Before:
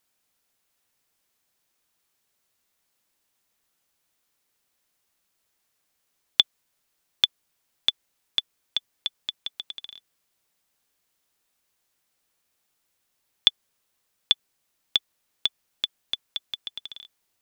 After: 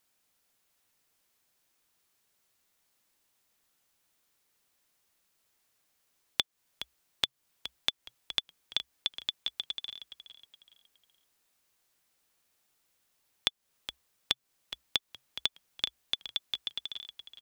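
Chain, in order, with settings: compressor, threshold -26 dBFS, peak gain reduction 13.5 dB; on a send: frequency-shifting echo 0.418 s, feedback 33%, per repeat -66 Hz, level -12 dB

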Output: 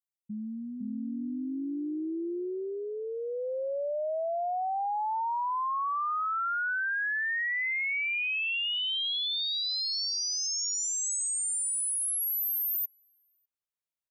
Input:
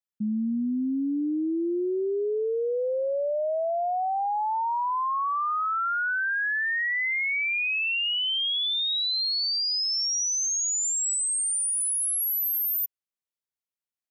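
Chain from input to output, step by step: dynamic EQ 430 Hz, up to -5 dB, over -42 dBFS, Q 3; three bands offset in time highs, lows, mids 90/600 ms, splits 220/5600 Hz; gain -3.5 dB

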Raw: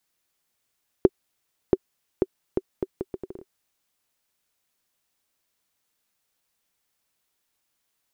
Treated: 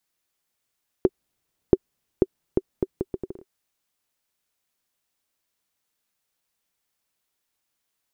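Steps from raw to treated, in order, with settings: 1.06–3.32 low shelf 470 Hz +9.5 dB; gain -2.5 dB

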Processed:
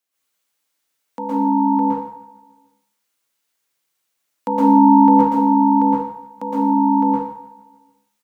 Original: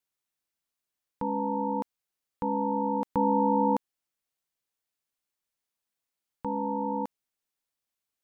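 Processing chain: whole clip reversed; HPF 270 Hz 6 dB/oct; on a send: feedback echo 0.149 s, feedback 59%, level -21 dB; on the sum: plate-style reverb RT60 0.68 s, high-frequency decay 1×, pre-delay 0.105 s, DRR -7.5 dB; gain +5.5 dB

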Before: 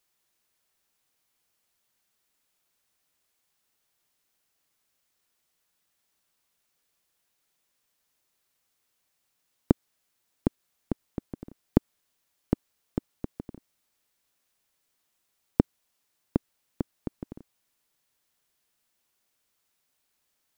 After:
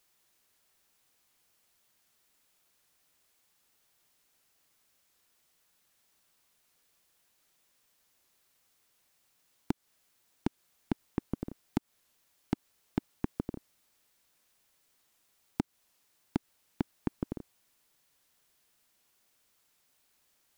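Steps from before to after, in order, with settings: compressor 6:1, threshold -22 dBFS, peak gain reduction 9.5 dB; hard clip -22 dBFS, distortion -4 dB; record warp 78 rpm, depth 100 cents; gain +4.5 dB

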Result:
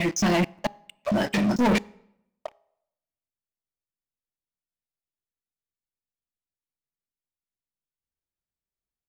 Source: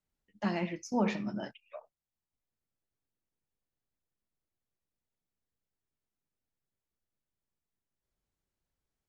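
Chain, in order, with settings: slices in reverse order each 0.223 s, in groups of 4; sample leveller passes 5; de-hum 410.7 Hz, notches 2; on a send: reverb RT60 0.85 s, pre-delay 4 ms, DRR 24 dB

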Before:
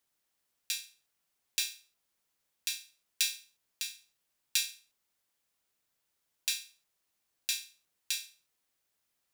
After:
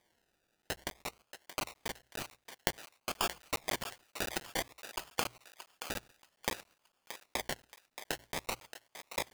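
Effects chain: level quantiser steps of 17 dB; reverb removal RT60 1.8 s; echoes that change speed 81 ms, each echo -2 st, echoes 2; bell 3500 Hz -14 dB 1.4 oct, from 3.23 s +4 dB, from 4.73 s -6.5 dB; compressor 3:1, threshold -44 dBFS, peak gain reduction 11 dB; decimation with a swept rate 32×, swing 60% 0.54 Hz; tilt shelf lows -8 dB, about 750 Hz; notches 60/120 Hz; thinning echo 0.626 s, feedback 33%, high-pass 610 Hz, level -10 dB; crackling interface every 0.14 s, samples 512, zero, from 0.62; gain +11.5 dB

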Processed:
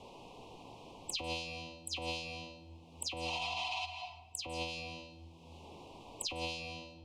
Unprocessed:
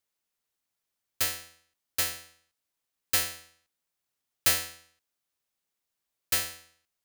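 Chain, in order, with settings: spectral delay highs early, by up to 0.111 s; treble ducked by the level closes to 2200 Hz, closed at -30 dBFS; spectral repair 3.28–3.83, 640–9500 Hz before; low-pass opened by the level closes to 1500 Hz, open at -37 dBFS; elliptic band-stop 980–2600 Hz, stop band 70 dB; low shelf 140 Hz -5 dB; in parallel at +1 dB: limiter -35.5 dBFS, peak gain reduction 9.5 dB; on the sum: negative-ratio compressor -43 dBFS, ratio -0.5; on a send at -9 dB: reverb RT60 0.70 s, pre-delay 0.145 s; on the sum: three-band squash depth 100%; gain +5 dB

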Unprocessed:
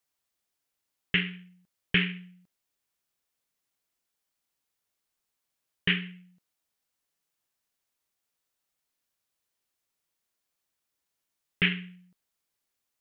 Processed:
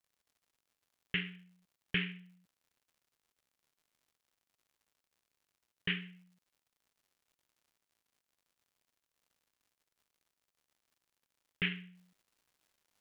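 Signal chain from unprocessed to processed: crackle 140/s -53 dBFS, from 11.96 s 380/s; gain -9 dB

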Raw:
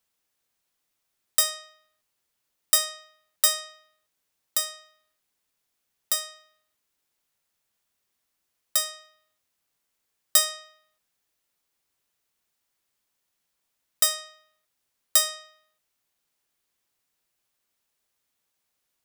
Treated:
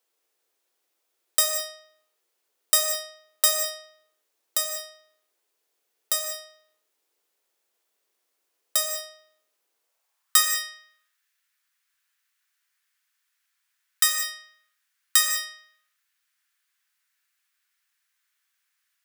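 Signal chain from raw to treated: non-linear reverb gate 0.23 s flat, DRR 4 dB; high-pass sweep 400 Hz -> 1600 Hz, 9.74–10.47

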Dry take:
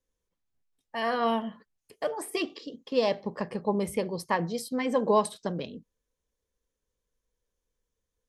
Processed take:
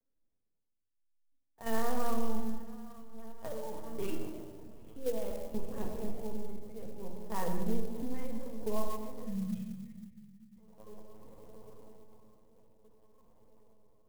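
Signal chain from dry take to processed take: bell 2800 Hz -8.5 dB 2.2 oct; diffused feedback echo 0.492 s, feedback 56%, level -12 dB; dynamic EQ 230 Hz, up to +5 dB, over -48 dBFS, Q 6.8; level quantiser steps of 11 dB; spectral delete 5.44–6.23, 240–1700 Hz; tremolo 0.89 Hz, depth 75%; granular stretch 1.7×, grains 45 ms; LPC vocoder at 8 kHz pitch kept; shoebox room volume 1300 m³, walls mixed, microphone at 1.7 m; clock jitter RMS 0.051 ms; gain -1.5 dB

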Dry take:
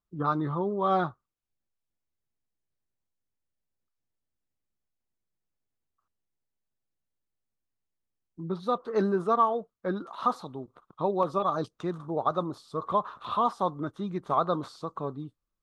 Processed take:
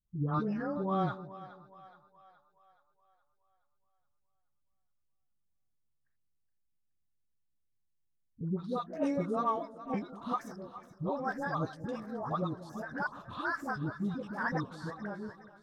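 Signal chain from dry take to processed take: trilling pitch shifter +6 st, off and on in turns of 0.382 s; tone controls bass +12 dB, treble +3 dB; dispersion highs, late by 88 ms, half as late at 570 Hz; on a send: split-band echo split 620 Hz, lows 0.187 s, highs 0.421 s, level -14.5 dB; on the sum: gain -8 dB

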